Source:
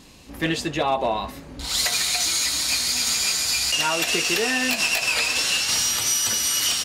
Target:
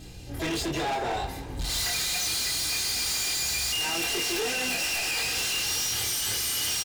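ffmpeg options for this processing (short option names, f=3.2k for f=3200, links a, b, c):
-filter_complex "[0:a]equalizer=f=1.1k:w=6.2:g=-13,aecho=1:1:2.5:0.94,acrossover=split=140[a][b];[a]acontrast=70[c];[c][b]amix=inputs=2:normalize=0,aeval=exprs='val(0)+0.00794*(sin(2*PI*60*n/s)+sin(2*PI*2*60*n/s)/2+sin(2*PI*3*60*n/s)/3+sin(2*PI*4*60*n/s)/4+sin(2*PI*5*60*n/s)/5)':c=same,asoftclip=type=tanh:threshold=-12dB,asplit=3[d][e][f];[e]asetrate=33038,aresample=44100,atempo=1.33484,volume=-17dB[g];[f]asetrate=88200,aresample=44100,atempo=0.5,volume=-11dB[h];[d][g][h]amix=inputs=3:normalize=0,flanger=delay=22.5:depth=4.9:speed=0.72,asoftclip=type=hard:threshold=-26.5dB,asplit=2[i][j];[j]asplit=5[k][l][m][n][o];[k]adelay=190,afreqshift=50,volume=-15.5dB[p];[l]adelay=380,afreqshift=100,volume=-21.3dB[q];[m]adelay=570,afreqshift=150,volume=-27.2dB[r];[n]adelay=760,afreqshift=200,volume=-33dB[s];[o]adelay=950,afreqshift=250,volume=-38.9dB[t];[p][q][r][s][t]amix=inputs=5:normalize=0[u];[i][u]amix=inputs=2:normalize=0"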